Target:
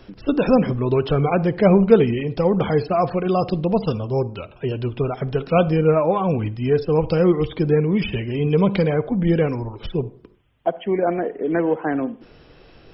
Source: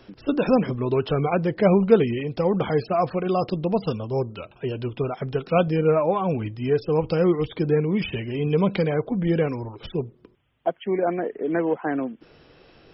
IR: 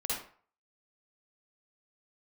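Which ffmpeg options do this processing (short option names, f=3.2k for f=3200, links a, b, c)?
-filter_complex "[0:a]lowshelf=f=68:g=10.5,asplit=2[a][b];[1:a]atrim=start_sample=2205,highshelf=f=2.9k:g=-9[c];[b][c]afir=irnorm=-1:irlink=0,volume=-19dB[d];[a][d]amix=inputs=2:normalize=0,volume=2dB"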